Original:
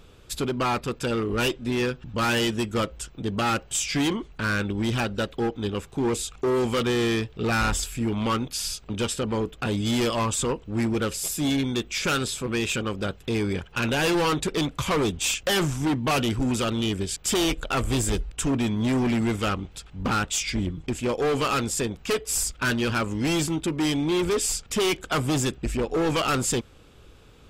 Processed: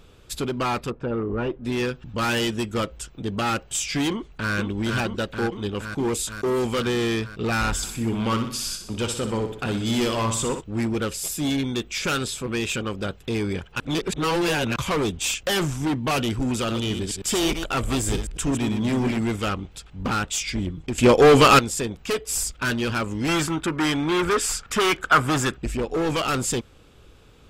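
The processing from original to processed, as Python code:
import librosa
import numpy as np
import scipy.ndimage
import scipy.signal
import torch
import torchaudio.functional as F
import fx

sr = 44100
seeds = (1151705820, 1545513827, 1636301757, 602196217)

y = fx.lowpass(x, sr, hz=1200.0, slope=12, at=(0.9, 1.64))
y = fx.echo_throw(y, sr, start_s=4.1, length_s=0.43, ms=470, feedback_pct=75, wet_db=-3.0)
y = fx.high_shelf(y, sr, hz=8900.0, db=8.5, at=(5.99, 6.67))
y = fx.echo_feedback(y, sr, ms=62, feedback_pct=49, wet_db=-8.0, at=(7.82, 10.6), fade=0.02)
y = fx.reverse_delay(y, sr, ms=105, wet_db=-7.0, at=(16.59, 19.18))
y = fx.peak_eq(y, sr, hz=1400.0, db=13.0, octaves=1.1, at=(23.28, 25.57))
y = fx.edit(y, sr, fx.reverse_span(start_s=13.8, length_s=0.96),
    fx.clip_gain(start_s=20.98, length_s=0.61, db=11.0), tone=tone)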